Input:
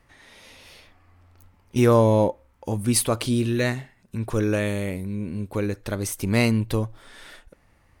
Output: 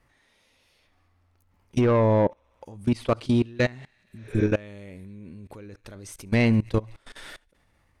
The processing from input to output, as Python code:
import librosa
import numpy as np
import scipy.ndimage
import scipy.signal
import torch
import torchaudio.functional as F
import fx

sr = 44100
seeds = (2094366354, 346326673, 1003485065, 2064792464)

p1 = fx.env_lowpass_down(x, sr, base_hz=2500.0, full_db=-15.5)
p2 = p1 + fx.echo_wet_highpass(p1, sr, ms=68, feedback_pct=81, hz=1700.0, wet_db=-23, dry=0)
p3 = 10.0 ** (-14.0 / 20.0) * np.tanh(p2 / 10.0 ** (-14.0 / 20.0))
p4 = fx.level_steps(p3, sr, step_db=23)
p5 = fx.spec_repair(p4, sr, seeds[0], start_s=4.11, length_s=0.3, low_hz=390.0, high_hz=7100.0, source='both')
y = p5 * 10.0 ** (4.0 / 20.0)